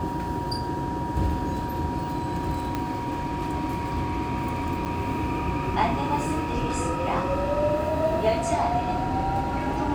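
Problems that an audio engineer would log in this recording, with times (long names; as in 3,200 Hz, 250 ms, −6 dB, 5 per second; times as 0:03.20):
whistle 950 Hz −31 dBFS
0:02.75: click −14 dBFS
0:04.85–0:04.86: drop-out 7.8 ms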